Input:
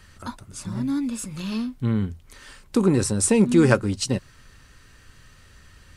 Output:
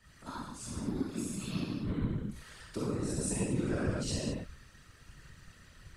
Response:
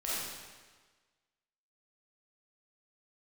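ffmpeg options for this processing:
-filter_complex "[1:a]atrim=start_sample=2205,afade=t=out:st=0.33:d=0.01,atrim=end_sample=14994[s0];[0:a][s0]afir=irnorm=-1:irlink=0,acrossover=split=120[s1][s2];[s2]acompressor=threshold=0.0794:ratio=5[s3];[s1][s3]amix=inputs=2:normalize=0,afftfilt=real='hypot(re,im)*cos(2*PI*random(0))':imag='hypot(re,im)*sin(2*PI*random(1))':win_size=512:overlap=0.75,volume=0.596"

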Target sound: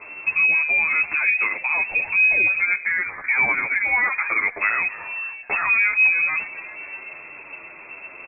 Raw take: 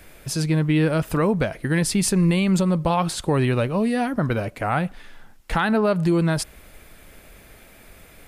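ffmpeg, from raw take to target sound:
-filter_complex "[0:a]asettb=1/sr,asplit=3[s0][s1][s2];[s0]atrim=end=2.594[s3];[s1]atrim=start=2.59:end=4.59,asetpts=PTS-STARTPTS,afade=t=in:d=0.004:c=qsin,afade=t=out:st=1.996:d=0.004:c=qsin,highpass=f=320:w=0.5412,highpass=f=320:w=1.3066[s4];[s2]atrim=start=4.586[s5];[s3][s4]acrossfade=d=0.004:c1=hsin:c2=qsin[s6];[s6][s5]acrossfade=d=0.004:c1=qsin:c2=hsin,acompressor=threshold=0.0794:ratio=3,asplit=5[s7][s8][s9][s10][s11];[s8]adelay=270,afreqshift=130,volume=0.075[s12];[s9]adelay=540,afreqshift=260,volume=0.0412[s13];[s10]adelay=810,afreqshift=390,volume=0.0226[s14];[s11]adelay=1080,afreqshift=520,volume=0.0124[s15];[s7][s12][s13][s14][s15]amix=inputs=5:normalize=0,lowpass=f=2300:t=q:w=0.5098,lowpass=f=2300:t=q:w=0.6013,lowpass=f=2300:t=q:w=0.9,lowpass=f=2300:t=q:w=2.563,afreqshift=-2700,alimiter=level_in=10:limit=0.891:release=50:level=0:latency=1,asplit=2[s16][s17];[s17]adelay=9.5,afreqshift=-1.8[s18];[s16][s18]amix=inputs=2:normalize=1,volume=0.376"

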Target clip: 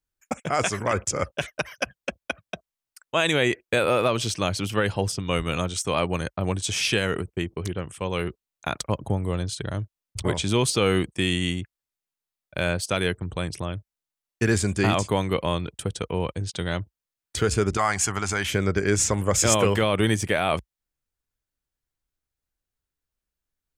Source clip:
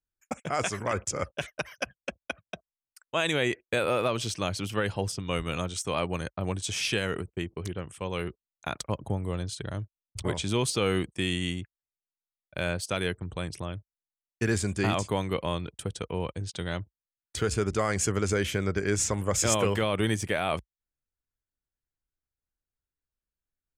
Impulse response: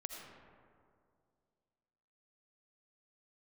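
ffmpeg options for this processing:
-filter_complex "[0:a]asettb=1/sr,asplit=3[s0][s1][s2];[s0]atrim=end=17.774[s3];[s1]atrim=start=17.77:end=18.5,asetpts=PTS-STARTPTS,afade=t=in:d=0.004:c=qsin,afade=t=out:st=0.726:d=0.004:c=qsin,lowshelf=f=630:t=q:w=3:g=-6.5[s4];[s2]atrim=start=18.496[s5];[s3][s4]acrossfade=d=0.004:c1=hsin:c2=qsin[s6];[s6][s5]acrossfade=d=0.004:c1=qsin:c2=hsin,volume=1.78"

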